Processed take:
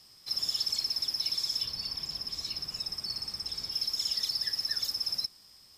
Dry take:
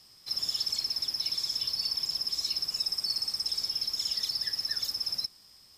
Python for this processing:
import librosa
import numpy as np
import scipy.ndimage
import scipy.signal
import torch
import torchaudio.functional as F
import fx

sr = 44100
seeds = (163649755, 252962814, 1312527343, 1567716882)

y = fx.bass_treble(x, sr, bass_db=6, treble_db=-7, at=(1.65, 3.72))